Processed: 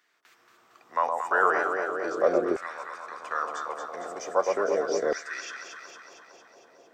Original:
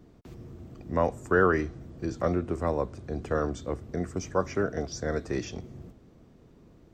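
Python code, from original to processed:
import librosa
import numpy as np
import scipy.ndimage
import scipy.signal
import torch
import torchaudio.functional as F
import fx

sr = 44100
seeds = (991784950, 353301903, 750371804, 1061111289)

y = fx.echo_alternate(x, sr, ms=114, hz=1000.0, feedback_pct=80, wet_db=-3)
y = fx.filter_lfo_highpass(y, sr, shape='saw_down', hz=0.39, low_hz=420.0, high_hz=1800.0, q=2.1)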